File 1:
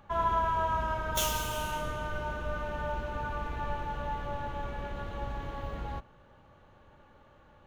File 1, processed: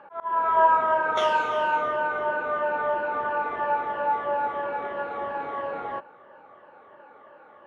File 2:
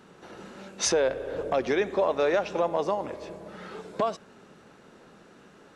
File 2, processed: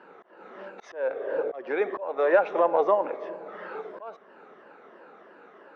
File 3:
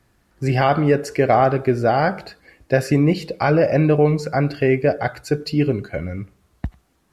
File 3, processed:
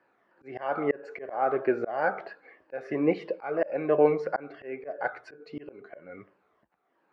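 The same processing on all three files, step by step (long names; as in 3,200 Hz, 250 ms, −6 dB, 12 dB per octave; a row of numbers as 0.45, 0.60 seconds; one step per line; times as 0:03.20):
rippled gain that drifts along the octave scale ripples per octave 1.3, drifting −3 Hz, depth 8 dB
flat-topped band-pass 860 Hz, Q 0.56
volume swells 387 ms
normalise the peak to −9 dBFS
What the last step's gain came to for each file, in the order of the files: +10.5, +4.5, −1.5 decibels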